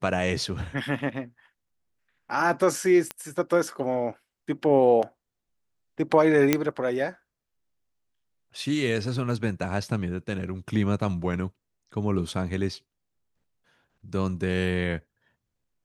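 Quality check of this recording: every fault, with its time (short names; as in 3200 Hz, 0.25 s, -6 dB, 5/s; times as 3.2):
3.11 pop -14 dBFS
6.53 pop -5 dBFS
14.13 gap 3.5 ms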